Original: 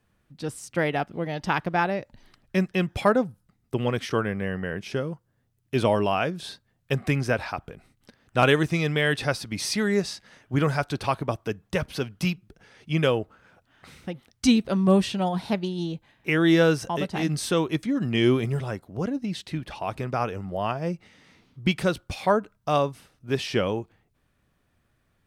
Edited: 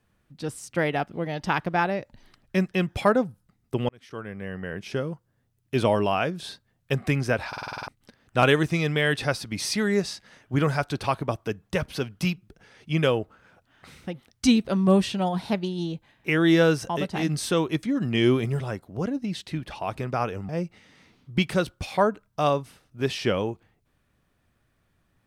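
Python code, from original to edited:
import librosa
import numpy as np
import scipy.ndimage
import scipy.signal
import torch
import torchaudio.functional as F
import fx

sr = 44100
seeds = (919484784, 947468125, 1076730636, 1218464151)

y = fx.edit(x, sr, fx.fade_in_span(start_s=3.89, length_s=1.12),
    fx.stutter_over(start_s=7.48, slice_s=0.05, count=8),
    fx.cut(start_s=20.49, length_s=0.29), tone=tone)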